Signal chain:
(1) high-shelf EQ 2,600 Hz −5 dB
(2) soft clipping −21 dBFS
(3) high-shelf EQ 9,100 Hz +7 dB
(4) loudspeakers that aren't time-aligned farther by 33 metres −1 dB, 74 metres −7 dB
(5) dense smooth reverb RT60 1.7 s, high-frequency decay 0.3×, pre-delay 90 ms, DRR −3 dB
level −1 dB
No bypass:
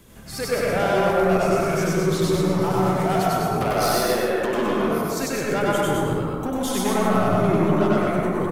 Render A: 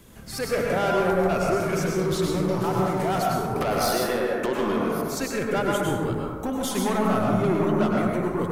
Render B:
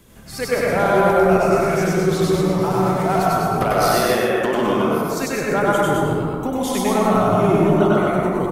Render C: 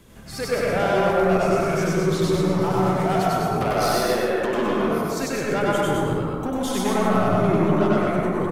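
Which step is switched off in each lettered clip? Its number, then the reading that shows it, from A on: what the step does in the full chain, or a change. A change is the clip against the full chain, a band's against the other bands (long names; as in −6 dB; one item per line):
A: 4, change in integrated loudness −3.0 LU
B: 2, distortion level −12 dB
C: 3, 8 kHz band −2.5 dB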